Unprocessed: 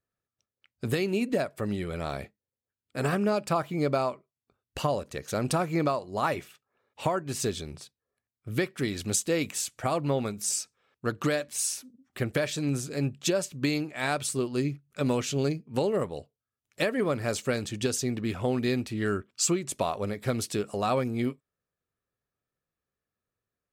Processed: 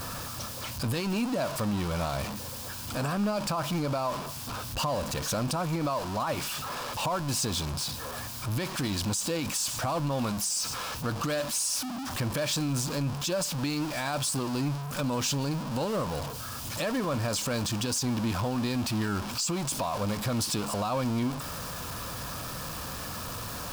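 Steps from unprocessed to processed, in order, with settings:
converter with a step at zero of −29 dBFS
thirty-one-band graphic EQ 400 Hz −12 dB, 1,000 Hz +7 dB, 2,000 Hz −8 dB, 5,000 Hz +5 dB
brickwall limiter −21.5 dBFS, peak gain reduction 11.5 dB

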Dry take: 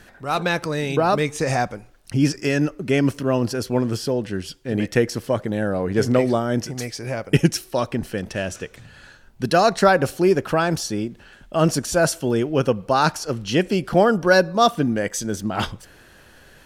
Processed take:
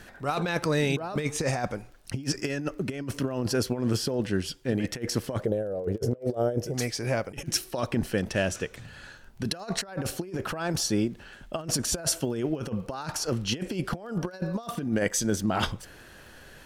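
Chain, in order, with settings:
0:05.45–0:06.74: octave-band graphic EQ 250/500/1,000/2,000/4,000/8,000 Hz −9/+12/−10/−10/−8/−7 dB
compressor whose output falls as the input rises −23 dBFS, ratio −0.5
surface crackle 14 per second −40 dBFS
level −4.5 dB

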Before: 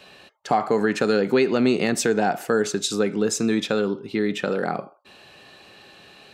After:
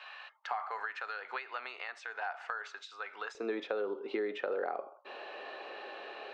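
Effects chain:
high-pass filter 1,000 Hz 24 dB per octave, from 0:03.35 430 Hz
downward compressor 6 to 1, threshold −41 dBFS, peak gain reduction 18.5 dB
head-to-tape spacing loss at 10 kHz 43 dB
level +11 dB

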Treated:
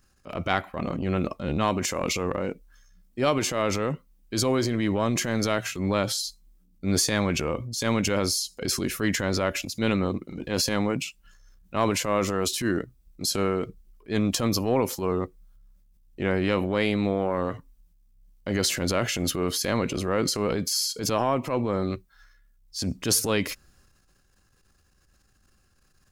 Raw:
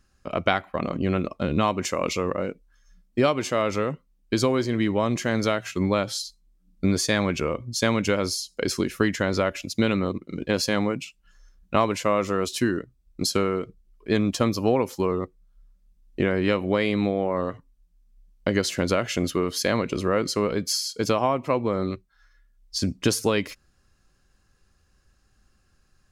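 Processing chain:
transient designer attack −9 dB, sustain +6 dB
high-shelf EQ 11,000 Hz +10.5 dB
level −1 dB

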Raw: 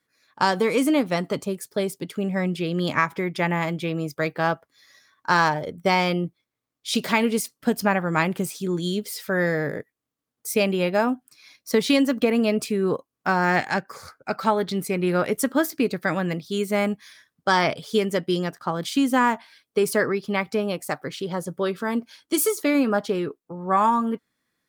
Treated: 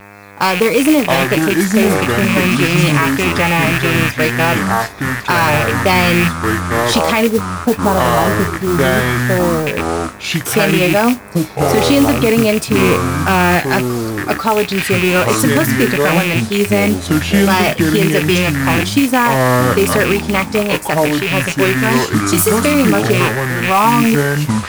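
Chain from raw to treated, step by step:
loose part that buzzes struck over −34 dBFS, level −16 dBFS
0:07.27–0:09.67: inverse Chebyshev low-pass filter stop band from 5,200 Hz, stop band 70 dB
hum with harmonics 100 Hz, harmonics 26, −47 dBFS −2 dB per octave
flanger 0.15 Hz, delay 5.5 ms, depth 4.1 ms, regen +67%
pitch vibrato 1.6 Hz 30 cents
noise that follows the level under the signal 16 dB
delay with pitch and tempo change per echo 503 ms, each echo −6 semitones, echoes 2
boost into a limiter +14.5 dB
level −1 dB

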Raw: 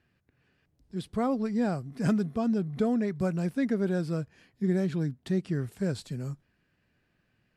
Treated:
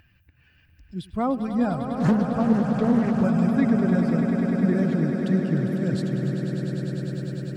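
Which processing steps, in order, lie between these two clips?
spectral dynamics exaggerated over time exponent 1.5
parametric band 410 Hz −7 dB 0.63 octaves
upward compression, threshold −45 dBFS
high-shelf EQ 3,300 Hz −8 dB
echo that builds up and dies away 100 ms, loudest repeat 8, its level −10 dB
0:01.93–0:03.24: highs frequency-modulated by the lows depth 0.38 ms
level +7.5 dB

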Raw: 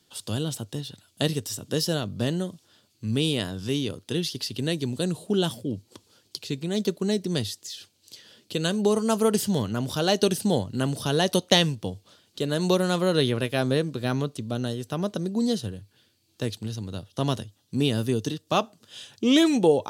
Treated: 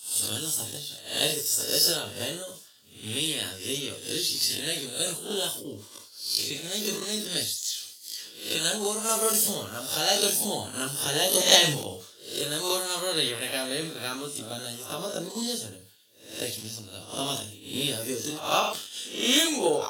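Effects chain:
peak hold with a rise ahead of every peak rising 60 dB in 0.56 s
transient designer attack +6 dB, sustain −2 dB
multi-voice chorus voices 2, 0.13 Hz, delay 19 ms, depth 1.1 ms
in parallel at −4 dB: soft clipping −7.5 dBFS, distortion −22 dB
on the sum: RIAA equalisation recording
convolution reverb, pre-delay 3 ms, DRR 9 dB
level that may fall only so fast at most 74 dB per second
level −8 dB

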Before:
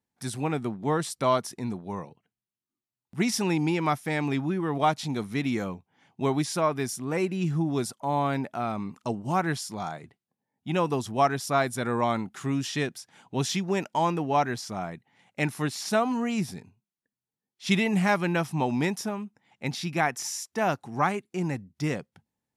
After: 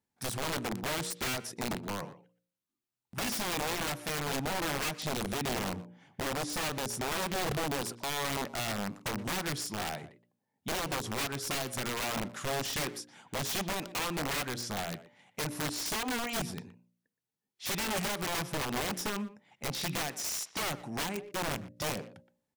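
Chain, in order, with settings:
0:05.24–0:07.53: low-shelf EQ 370 Hz +6 dB
hum removal 59.15 Hz, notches 10
downward compressor 8 to 1, threshold −28 dBFS, peak gain reduction 11.5 dB
wrap-around overflow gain 28 dB
far-end echo of a speakerphone 120 ms, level −13 dB

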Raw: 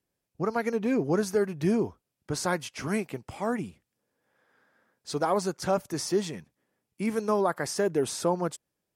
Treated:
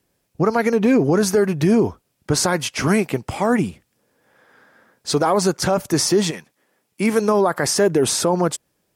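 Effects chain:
0:06.30–0:07.20: high-pass filter 840 Hz → 210 Hz 6 dB per octave
boost into a limiter +21 dB
level −7 dB

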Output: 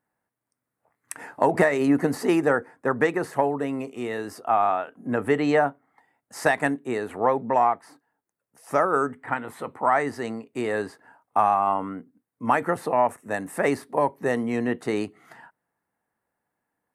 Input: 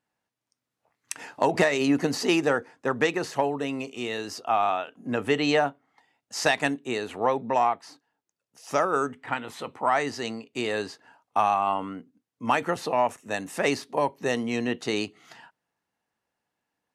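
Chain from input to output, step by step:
flat-topped bell 4,200 Hz −12.5 dB
level +2.5 dB

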